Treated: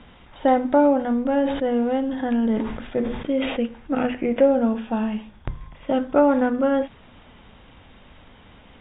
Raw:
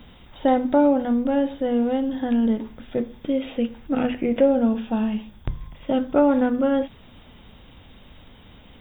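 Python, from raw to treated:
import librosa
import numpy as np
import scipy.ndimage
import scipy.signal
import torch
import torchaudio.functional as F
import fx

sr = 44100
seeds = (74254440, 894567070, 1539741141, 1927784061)

y = scipy.signal.sosfilt(scipy.signal.butter(2, 2400.0, 'lowpass', fs=sr, output='sos'), x)
y = fx.low_shelf(y, sr, hz=500.0, db=-7.0)
y = fx.sustainer(y, sr, db_per_s=51.0, at=(1.35, 3.56), fade=0.02)
y = y * 10.0 ** (4.5 / 20.0)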